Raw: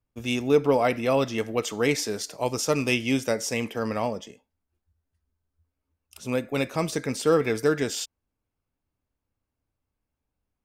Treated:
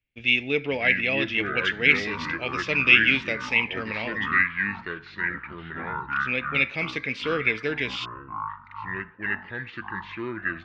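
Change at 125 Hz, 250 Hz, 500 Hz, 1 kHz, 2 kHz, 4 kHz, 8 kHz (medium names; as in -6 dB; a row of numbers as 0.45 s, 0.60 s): -3.0 dB, -4.0 dB, -6.5 dB, +0.5 dB, +12.5 dB, +5.0 dB, under -15 dB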